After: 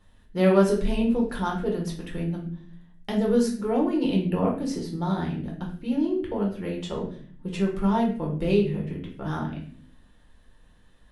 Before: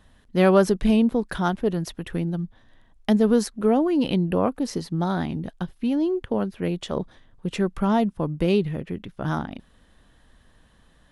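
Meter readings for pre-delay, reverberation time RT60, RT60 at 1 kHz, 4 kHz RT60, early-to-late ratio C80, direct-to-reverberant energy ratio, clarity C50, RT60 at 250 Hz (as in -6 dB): 6 ms, 0.50 s, 0.45 s, 0.40 s, 10.5 dB, -2.0 dB, 6.5 dB, 0.95 s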